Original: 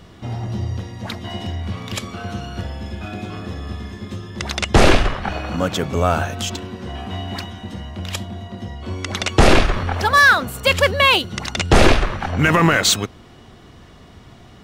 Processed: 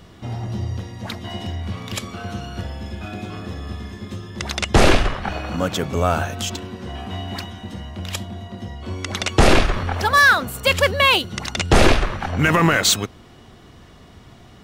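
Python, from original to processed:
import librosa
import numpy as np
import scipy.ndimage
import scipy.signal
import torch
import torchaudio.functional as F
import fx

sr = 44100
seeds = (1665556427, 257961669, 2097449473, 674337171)

y = fx.high_shelf(x, sr, hz=9300.0, db=4.0)
y = y * 10.0 ** (-1.5 / 20.0)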